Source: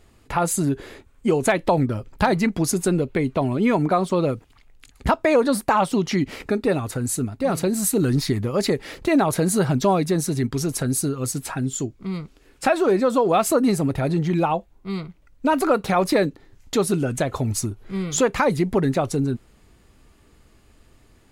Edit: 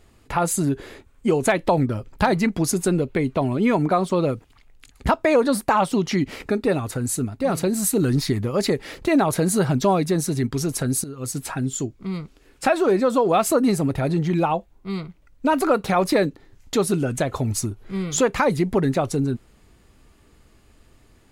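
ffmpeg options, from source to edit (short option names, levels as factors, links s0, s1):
-filter_complex "[0:a]asplit=2[s0][s1];[s0]atrim=end=11.04,asetpts=PTS-STARTPTS,afade=t=out:st=11.036:d=0.004:c=hsin:silence=0.177828[s2];[s1]atrim=start=11.04,asetpts=PTS-STARTPTS,afade=t=in:d=0.36:silence=0.177828[s3];[s2][s3]concat=n=2:v=0:a=1"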